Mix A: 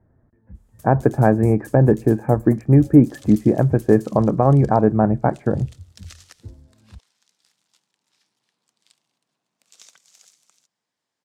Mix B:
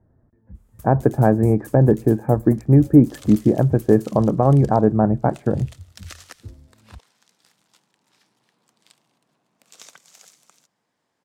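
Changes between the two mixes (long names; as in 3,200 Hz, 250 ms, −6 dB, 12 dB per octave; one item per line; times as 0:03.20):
first sound +7.5 dB
second sound +11.5 dB
master: add parametric band 5,500 Hz −9 dB 2.8 octaves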